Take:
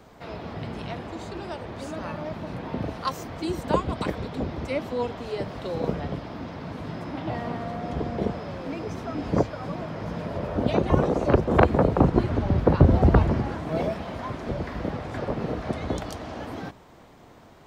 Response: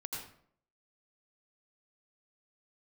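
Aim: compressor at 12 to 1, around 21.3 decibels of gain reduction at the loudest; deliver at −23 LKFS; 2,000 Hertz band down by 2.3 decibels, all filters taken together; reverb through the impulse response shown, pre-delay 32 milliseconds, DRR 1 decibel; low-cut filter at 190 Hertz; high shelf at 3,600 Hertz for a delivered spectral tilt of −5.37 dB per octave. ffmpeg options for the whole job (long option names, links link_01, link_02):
-filter_complex "[0:a]highpass=190,equalizer=frequency=2000:width_type=o:gain=-5.5,highshelf=frequency=3600:gain=9,acompressor=threshold=-37dB:ratio=12,asplit=2[link_01][link_02];[1:a]atrim=start_sample=2205,adelay=32[link_03];[link_02][link_03]afir=irnorm=-1:irlink=0,volume=-1dB[link_04];[link_01][link_04]amix=inputs=2:normalize=0,volume=16dB"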